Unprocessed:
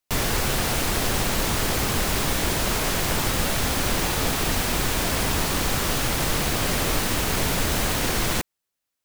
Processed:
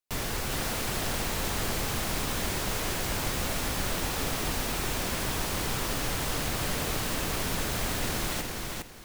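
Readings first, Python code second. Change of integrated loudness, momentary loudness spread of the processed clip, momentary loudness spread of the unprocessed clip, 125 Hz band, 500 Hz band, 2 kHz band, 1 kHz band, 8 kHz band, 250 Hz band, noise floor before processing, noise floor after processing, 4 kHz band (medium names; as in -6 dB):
-7.0 dB, 1 LU, 0 LU, -7.0 dB, -7.0 dB, -7.0 dB, -7.0 dB, -7.0 dB, -7.0 dB, -83 dBFS, -35 dBFS, -7.0 dB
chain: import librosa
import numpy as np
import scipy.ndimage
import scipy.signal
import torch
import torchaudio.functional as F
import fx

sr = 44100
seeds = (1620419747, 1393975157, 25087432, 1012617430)

y = fx.echo_feedback(x, sr, ms=407, feedback_pct=24, wet_db=-3.5)
y = y * librosa.db_to_amplitude(-8.5)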